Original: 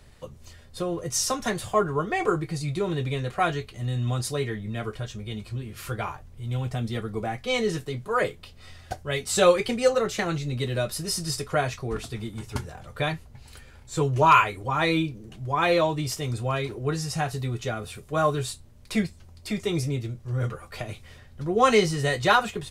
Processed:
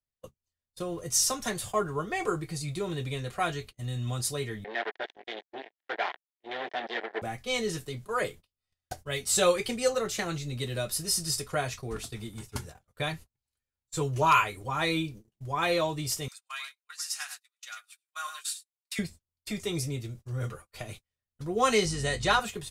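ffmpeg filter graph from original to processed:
ffmpeg -i in.wav -filter_complex "[0:a]asettb=1/sr,asplit=3[link_01][link_02][link_03];[link_01]atrim=end=4.644[link_04];[link_02]atrim=start=4.64:end=7.22,asetpts=PTS-STARTPTS,afade=type=in:duration=0.004:curve=qsin,afade=type=out:start_time=2.576:duration=0.004:curve=qsin,acontrast=41,acrusher=bits=3:mix=0:aa=0.5,highpass=frequency=370:width=0.5412,highpass=frequency=370:width=1.3066,equalizer=frequency=500:width_type=q:width=4:gain=-4,equalizer=frequency=730:width_type=q:width=4:gain=5,equalizer=frequency=1200:width_type=q:width=4:gain=-8,equalizer=frequency=1800:width_type=q:width=4:gain=9,equalizer=frequency=2600:width_type=q:width=4:gain=-4,lowpass=frequency=3400:width=0.5412,lowpass=frequency=3400:width=1.3066[link_05];[link_03]atrim=start=7.216[link_06];[link_04][link_05]acrossfade=duration=0.004:curve1=hsin:curve2=qsin[link_07];[link_07][link_06]acrossfade=duration=0.004:curve1=qsin:curve2=hsin,asettb=1/sr,asplit=3[link_08][link_09][link_10];[link_08]atrim=end=16.284[link_11];[link_09]atrim=start=16.28:end=18.99,asetpts=PTS-STARTPTS,afade=type=in:duration=0.004:curve=qsin,afade=type=out:start_time=2.706:duration=0.004:curve=qsin,highpass=frequency=1300:width=0.5412,highpass=frequency=1300:width=1.3066,aecho=1:1:102:0.376,atrim=end_sample=119511[link_12];[link_10]atrim=start=18.986[link_13];[link_11][link_12]acrossfade=duration=0.004:curve1=hsin:curve2=qsin[link_14];[link_14][link_13]acrossfade=duration=0.004:curve1=qsin:curve2=hsin,asettb=1/sr,asplit=3[link_15][link_16][link_17];[link_15]atrim=end=21.854[link_18];[link_16]atrim=start=21.85:end=22.4,asetpts=PTS-STARTPTS,afade=type=in:duration=0.004:curve=qsin,afade=type=out:start_time=0.546:duration=0.004:curve=qsin,lowpass=frequency=9900:width=0.5412,lowpass=frequency=9900:width=1.3066,aeval=exprs='val(0)+0.0224*(sin(2*PI*50*n/s)+sin(2*PI*2*50*n/s)/2+sin(2*PI*3*50*n/s)/3+sin(2*PI*4*50*n/s)/4+sin(2*PI*5*50*n/s)/5)':channel_layout=same[link_19];[link_17]atrim=start=22.396[link_20];[link_18][link_19]acrossfade=duration=0.004:curve1=hsin:curve2=qsin[link_21];[link_21][link_20]acrossfade=duration=0.004:curve1=qsin:curve2=hsin,agate=range=-39dB:threshold=-38dB:ratio=16:detection=peak,highshelf=frequency=4500:gain=10.5,volume=-6dB" out.wav

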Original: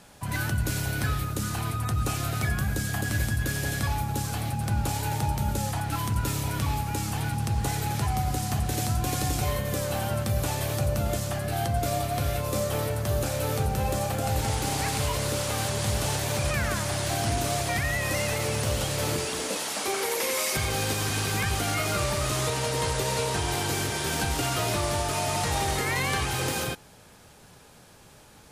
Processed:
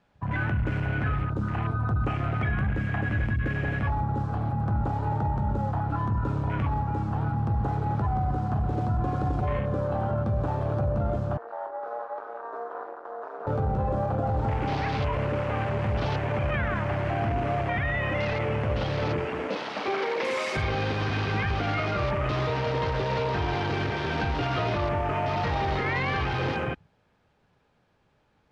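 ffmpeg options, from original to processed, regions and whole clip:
ffmpeg -i in.wav -filter_complex "[0:a]asettb=1/sr,asplit=3[link_01][link_02][link_03];[link_01]atrim=end=11.374[link_04];[link_02]atrim=start=11.37:end=13.47,asetpts=PTS-STARTPTS,afade=type=in:duration=0.004:curve=qsin,afade=type=out:start_time=2.096:duration=0.004:curve=qsin,highpass=750,lowpass=5500,highshelf=frequency=2000:width_type=q:width=1.5:gain=-8.5,aeval=exprs='val(0)*sin(2*PI*120*n/s)':channel_layout=same[link_05];[link_03]atrim=start=13.466[link_06];[link_04][link_05]acrossfade=duration=0.004:curve1=hsin:curve2=qsin[link_07];[link_07][link_06]acrossfade=duration=0.004:curve1=qsin:curve2=hsin,afwtdn=0.0178,lowpass=2800,alimiter=limit=-21.5dB:level=0:latency=1:release=11,volume=2.5dB" out.wav

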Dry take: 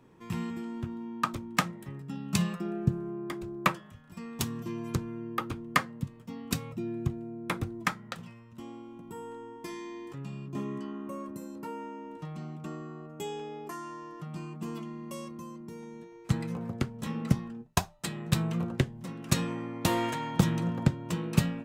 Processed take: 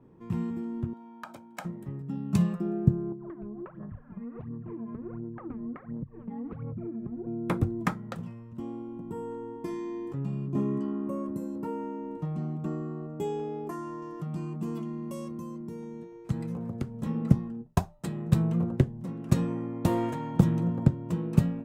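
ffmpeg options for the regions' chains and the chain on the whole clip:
ffmpeg -i in.wav -filter_complex "[0:a]asettb=1/sr,asplit=3[link_01][link_02][link_03];[link_01]atrim=end=0.934[link_04];[link_02]atrim=start=0.93:end=1.65,asetpts=PTS-STARTPTS,afade=type=in:duration=0.004:curve=qsin,afade=type=out:start_time=0.716:duration=0.004:curve=qsin,highpass=490,acompressor=threshold=-30dB:ratio=3:attack=3.2:release=140:knee=1:detection=peak,aecho=1:1:1.3:0.64,atrim=end_sample=31752[link_05];[link_03]atrim=start=1.646[link_06];[link_04][link_05]acrossfade=duration=0.004:curve1=hsin:curve2=qsin[link_07];[link_07][link_06]acrossfade=duration=0.004:curve1=qsin:curve2=hsin,asettb=1/sr,asplit=3[link_08][link_09][link_10];[link_08]atrim=end=3.124[link_11];[link_09]atrim=start=3.12:end=7.27,asetpts=PTS-STARTPTS,afade=type=in:duration=0.004:curve=qsin,afade=type=out:start_time=4.146:duration=0.004:curve=qsin,aphaser=in_gain=1:out_gain=1:delay=4.9:decay=0.79:speed=1.4:type=sinusoidal,acompressor=threshold=-39dB:ratio=20:attack=3.2:release=140:knee=1:detection=peak,lowpass=frequency=2000:width=0.5412,lowpass=frequency=2000:width=1.3066[link_12];[link_10]atrim=start=7.266[link_13];[link_11][link_12]acrossfade=duration=0.004:curve1=hsin:curve2=qsin[link_14];[link_14][link_13]acrossfade=duration=0.004:curve1=qsin:curve2=hsin,asettb=1/sr,asplit=3[link_15][link_16][link_17];[link_15]atrim=end=14.024[link_18];[link_16]atrim=start=14.02:end=17.02,asetpts=PTS-STARTPTS,afade=type=in:duration=0.004:curve=qsin,afade=type=out:start_time=2.996:duration=0.004:curve=qsin,highshelf=frequency=2600:gain=7.5,acompressor=threshold=-40dB:ratio=1.5:attack=3.2:release=140:knee=1:detection=peak[link_19];[link_17]atrim=start=17.016[link_20];[link_18][link_19]acrossfade=duration=0.004:curve1=hsin:curve2=qsin[link_21];[link_21][link_20]acrossfade=duration=0.004:curve1=qsin:curve2=hsin,tiltshelf=frequency=1300:gain=9.5,dynaudnorm=framelen=180:gausssize=21:maxgain=4dB,adynamicequalizer=threshold=0.00224:dfrequency=6000:dqfactor=0.7:tfrequency=6000:tqfactor=0.7:attack=5:release=100:ratio=0.375:range=3.5:mode=boostabove:tftype=highshelf,volume=-5.5dB" out.wav

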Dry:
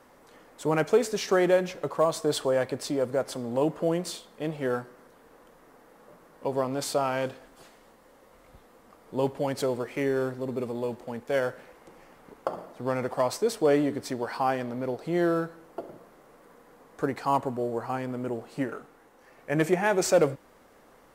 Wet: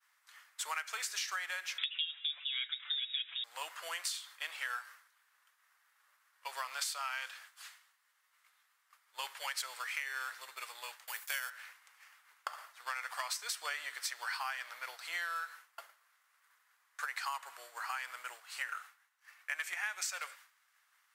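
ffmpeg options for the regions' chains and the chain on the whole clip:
ffmpeg -i in.wav -filter_complex "[0:a]asettb=1/sr,asplit=3[link_01][link_02][link_03];[link_01]atrim=end=1.784[link_04];[link_02]atrim=start=1.78:end=3.44,asetpts=PTS-STARTPTS,afade=type=in:duration=0.004:curve=qsin,afade=type=out:start_time=1.656:duration=0.004:curve=qsin,equalizer=frequency=2700:width=0.76:gain=7,aecho=1:1:6.6:0.65,atrim=end_sample=73206,lowpass=frequency=3300:width_type=q:width=0.5098,lowpass=frequency=3300:width_type=q:width=0.6013,lowpass=frequency=3300:width_type=q:width=0.9,lowpass=frequency=3300:width_type=q:width=2.563,afreqshift=-3900[link_05];[link_03]atrim=start=3.436[link_06];[link_04][link_05]acrossfade=duration=0.004:curve1=hsin:curve2=qsin[link_07];[link_07][link_06]acrossfade=duration=0.004:curve1=qsin:curve2=hsin,asettb=1/sr,asplit=3[link_08][link_09][link_10];[link_08]atrim=end=11.074[link_11];[link_09]atrim=start=11.07:end=11.5,asetpts=PTS-STARTPTS,afade=type=in:duration=0.004:curve=qsin,afade=type=out:start_time=0.426:duration=0.004:curve=qsin,aemphasis=mode=production:type=50fm,agate=range=-33dB:threshold=-46dB:ratio=3:release=100:detection=peak[link_12];[link_10]atrim=start=11.496[link_13];[link_11][link_12]acrossfade=duration=0.004:curve1=hsin:curve2=qsin[link_14];[link_14][link_13]acrossfade=duration=0.004:curve1=qsin:curve2=hsin,highpass=frequency=1400:width=0.5412,highpass=frequency=1400:width=1.3066,agate=range=-33dB:threshold=-54dB:ratio=3:detection=peak,acompressor=threshold=-42dB:ratio=12,volume=7.5dB" out.wav

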